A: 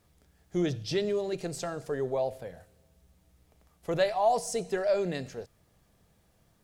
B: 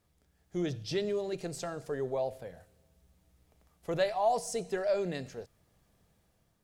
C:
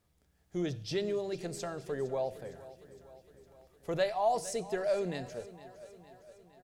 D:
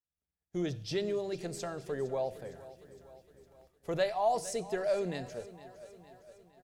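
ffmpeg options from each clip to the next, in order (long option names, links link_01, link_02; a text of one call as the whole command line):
ffmpeg -i in.wav -af "dynaudnorm=framelen=240:gausssize=5:maxgain=4dB,volume=-7dB" out.wav
ffmpeg -i in.wav -af "aecho=1:1:460|920|1380|1840|2300|2760:0.141|0.0833|0.0492|0.029|0.0171|0.0101,volume=-1dB" out.wav
ffmpeg -i in.wav -af "agate=range=-33dB:threshold=-56dB:ratio=3:detection=peak" out.wav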